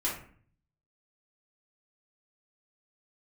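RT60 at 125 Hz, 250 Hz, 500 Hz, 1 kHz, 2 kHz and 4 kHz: 0.90 s, 0.65 s, 0.50 s, 0.45 s, 0.45 s, 0.30 s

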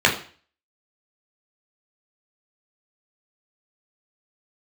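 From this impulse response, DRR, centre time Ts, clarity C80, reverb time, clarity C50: -2.5 dB, 20 ms, 14.0 dB, 0.45 s, 10.0 dB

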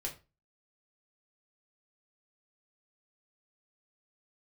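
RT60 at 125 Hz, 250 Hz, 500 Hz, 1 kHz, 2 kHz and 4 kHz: 0.40 s, 0.35 s, 0.30 s, 0.30 s, 0.25 s, 0.25 s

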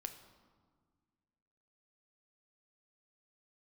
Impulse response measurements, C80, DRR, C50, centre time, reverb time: 11.5 dB, 7.0 dB, 10.0 dB, 16 ms, 1.7 s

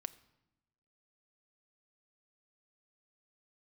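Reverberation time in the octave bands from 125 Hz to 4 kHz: 1.3 s, 1.2 s, 0.95 s, 0.95 s, 0.80 s, 0.70 s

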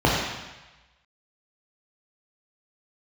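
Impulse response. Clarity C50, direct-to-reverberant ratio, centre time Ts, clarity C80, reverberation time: 0.0 dB, -4.0 dB, 74 ms, 2.5 dB, 1.1 s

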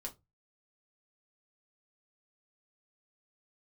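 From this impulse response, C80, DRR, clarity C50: 27.5 dB, -0.5 dB, 18.0 dB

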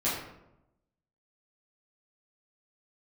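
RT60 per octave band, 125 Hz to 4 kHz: 1.1 s, 1.0 s, 0.95 s, 0.80 s, 0.65 s, 0.50 s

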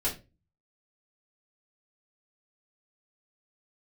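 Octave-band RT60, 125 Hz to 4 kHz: 0.60 s, 0.40 s, 0.35 s, 0.25 s, 0.25 s, 0.20 s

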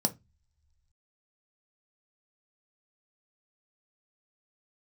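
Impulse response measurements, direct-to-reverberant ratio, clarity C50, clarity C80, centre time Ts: 6.5 dB, 20.0 dB, 29.0 dB, 5 ms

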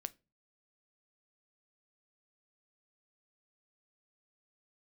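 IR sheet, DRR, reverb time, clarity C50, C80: 13.5 dB, 0.30 s, 24.5 dB, 31.0 dB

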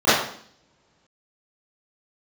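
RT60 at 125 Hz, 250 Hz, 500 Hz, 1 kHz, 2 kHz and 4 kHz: 1.9 s, 0.85 s, 0.60 s, 0.55 s, 0.55 s, 0.60 s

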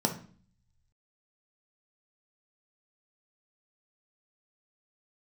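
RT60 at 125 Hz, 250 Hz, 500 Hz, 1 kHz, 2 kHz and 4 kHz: 1.3 s, 0.75 s, 0.45 s, 0.45 s, 0.40 s, 0.45 s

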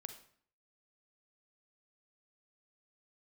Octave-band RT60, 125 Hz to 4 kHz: 0.65 s, 0.65 s, 0.55 s, 0.55 s, 0.50 s, 0.45 s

